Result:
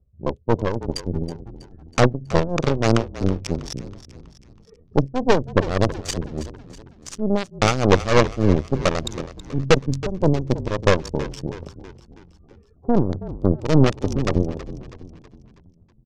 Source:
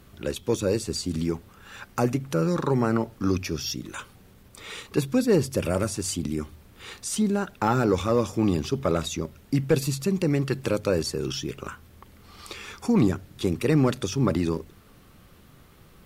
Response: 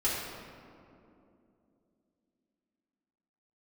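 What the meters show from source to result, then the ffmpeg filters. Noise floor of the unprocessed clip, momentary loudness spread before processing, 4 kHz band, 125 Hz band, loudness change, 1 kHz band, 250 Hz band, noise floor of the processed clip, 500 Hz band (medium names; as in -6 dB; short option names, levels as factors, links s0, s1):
-53 dBFS, 16 LU, +3.0 dB, +5.0 dB, +4.0 dB, +6.0 dB, +1.5 dB, -54 dBFS, +4.0 dB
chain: -filter_complex "[0:a]afftdn=nr=19:nf=-35,aecho=1:1:1.7:0.56,acrossover=split=560[s0][s1];[s0]crystalizer=i=7.5:c=0[s2];[s1]acrusher=bits=3:mix=0:aa=0.5[s3];[s2][s3]amix=inputs=2:normalize=0,aeval=exprs='0.398*(cos(1*acos(clip(val(0)/0.398,-1,1)))-cos(1*PI/2))+0.112*(cos(6*acos(clip(val(0)/0.398,-1,1)))-cos(6*PI/2))':c=same,tremolo=f=3.4:d=0.71,lowpass=f=6200:t=q:w=2,asplit=6[s4][s5][s6][s7][s8][s9];[s5]adelay=323,afreqshift=-43,volume=0.188[s10];[s6]adelay=646,afreqshift=-86,volume=0.0944[s11];[s7]adelay=969,afreqshift=-129,volume=0.0473[s12];[s8]adelay=1292,afreqshift=-172,volume=0.0234[s13];[s9]adelay=1615,afreqshift=-215,volume=0.0117[s14];[s4][s10][s11][s12][s13][s14]amix=inputs=6:normalize=0,volume=1.68"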